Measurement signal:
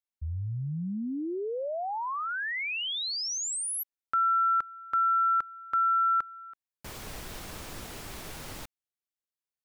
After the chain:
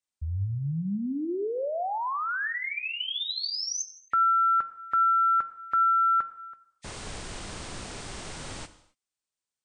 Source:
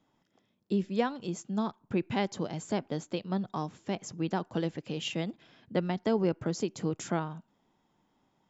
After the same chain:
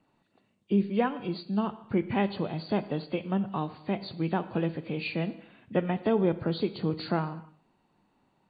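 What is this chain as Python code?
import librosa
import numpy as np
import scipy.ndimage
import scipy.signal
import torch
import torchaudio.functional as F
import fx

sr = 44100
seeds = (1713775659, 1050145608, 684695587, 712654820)

y = fx.freq_compress(x, sr, knee_hz=1800.0, ratio=1.5)
y = fx.rev_gated(y, sr, seeds[0], gate_ms=300, shape='falling', drr_db=12.0)
y = F.gain(torch.from_numpy(y), 2.5).numpy()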